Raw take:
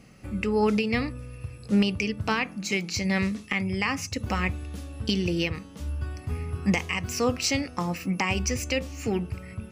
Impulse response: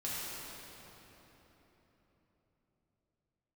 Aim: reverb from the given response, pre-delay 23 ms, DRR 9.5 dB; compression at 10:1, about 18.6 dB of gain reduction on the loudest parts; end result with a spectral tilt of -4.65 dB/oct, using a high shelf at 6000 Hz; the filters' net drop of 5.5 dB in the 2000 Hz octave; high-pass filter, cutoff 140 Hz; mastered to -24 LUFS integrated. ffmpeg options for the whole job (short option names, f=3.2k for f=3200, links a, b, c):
-filter_complex "[0:a]highpass=140,equalizer=f=2k:t=o:g=-6,highshelf=f=6k:g=-5,acompressor=threshold=-38dB:ratio=10,asplit=2[a][b];[1:a]atrim=start_sample=2205,adelay=23[c];[b][c]afir=irnorm=-1:irlink=0,volume=-13.5dB[d];[a][d]amix=inputs=2:normalize=0,volume=18dB"